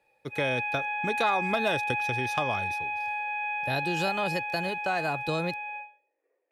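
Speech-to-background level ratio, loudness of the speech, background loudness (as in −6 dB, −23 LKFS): −1.0 dB, −31.5 LKFS, −30.5 LKFS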